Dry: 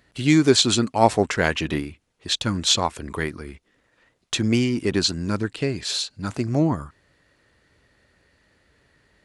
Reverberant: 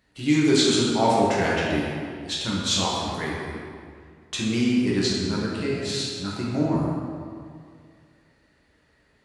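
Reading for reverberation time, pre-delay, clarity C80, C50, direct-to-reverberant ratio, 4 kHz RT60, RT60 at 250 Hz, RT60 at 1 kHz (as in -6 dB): 2.2 s, 6 ms, 0.5 dB, -1.5 dB, -5.5 dB, 1.4 s, 2.2 s, 2.2 s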